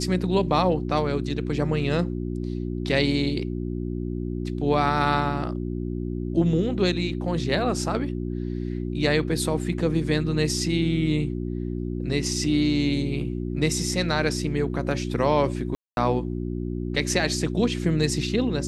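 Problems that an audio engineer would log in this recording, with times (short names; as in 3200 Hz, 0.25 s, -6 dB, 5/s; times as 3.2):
hum 60 Hz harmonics 6 -29 dBFS
15.75–15.97 gap 0.221 s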